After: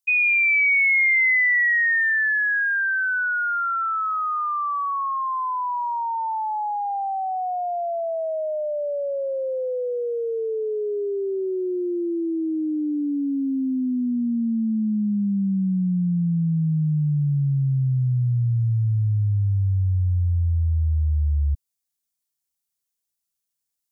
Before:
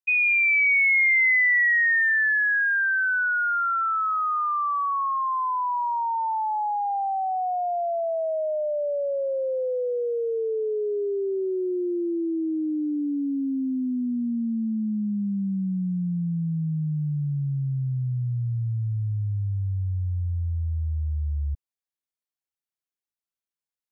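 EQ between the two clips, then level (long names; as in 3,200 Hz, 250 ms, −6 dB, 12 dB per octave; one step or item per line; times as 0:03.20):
bass and treble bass +6 dB, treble +13 dB
0.0 dB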